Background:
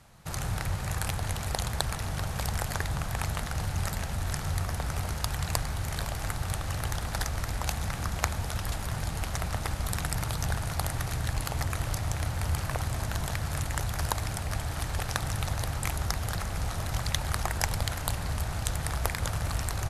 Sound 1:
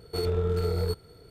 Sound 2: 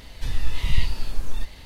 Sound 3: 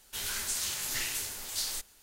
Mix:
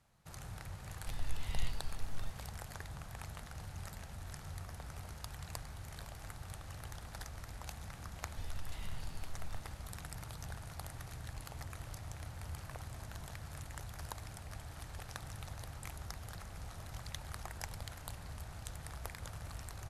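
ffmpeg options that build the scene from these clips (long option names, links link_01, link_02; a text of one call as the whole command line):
ffmpeg -i bed.wav -i cue0.wav -i cue1.wav -filter_complex "[2:a]asplit=2[link_01][link_02];[0:a]volume=-15.5dB[link_03];[link_02]acompressor=threshold=-17dB:ratio=6:attack=3.2:release=140:knee=1:detection=peak[link_04];[link_01]atrim=end=1.65,asetpts=PTS-STARTPTS,volume=-15.5dB,afade=type=in:duration=0.004:curve=hsin,afade=type=out:start_time=1.646:duration=0.004:curve=hsin,adelay=850[link_05];[link_04]atrim=end=1.65,asetpts=PTS-STARTPTS,volume=-18dB,afade=type=in:duration=0.004:curve=hsin,afade=type=out:start_time=1.646:duration=0.004:curve=hsin,adelay=8150[link_06];[link_03][link_05][link_06]amix=inputs=3:normalize=0" out.wav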